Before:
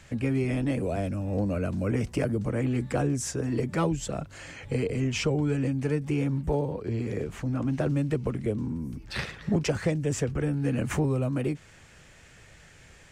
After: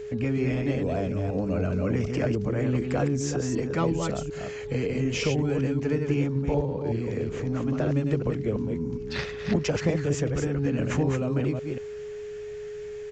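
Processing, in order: chunks repeated in reverse 187 ms, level -4.5 dB; whistle 420 Hz -34 dBFS; resampled via 16 kHz

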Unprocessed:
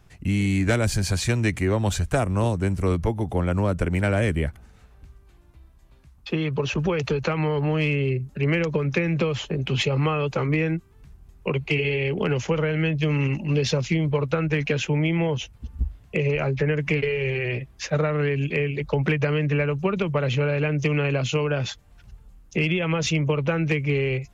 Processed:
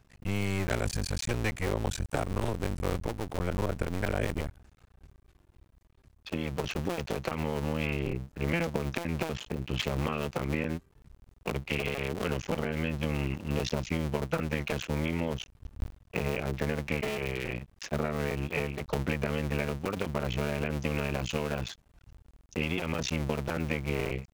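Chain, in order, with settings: cycle switcher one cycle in 2, muted; trim -5.5 dB

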